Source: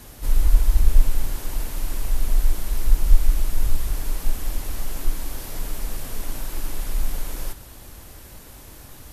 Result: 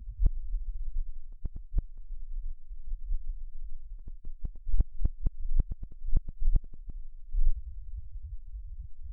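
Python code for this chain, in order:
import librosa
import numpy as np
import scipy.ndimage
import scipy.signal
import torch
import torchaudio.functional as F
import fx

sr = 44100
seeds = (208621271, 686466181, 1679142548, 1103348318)

y = fx.spec_topn(x, sr, count=2)
y = fx.gate_flip(y, sr, shuts_db=-20.0, range_db=-25)
y = F.gain(torch.from_numpy(y), 8.0).numpy()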